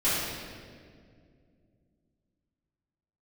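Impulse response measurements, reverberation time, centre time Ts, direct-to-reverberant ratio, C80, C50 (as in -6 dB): 2.1 s, 121 ms, -14.0 dB, 0.0 dB, -2.5 dB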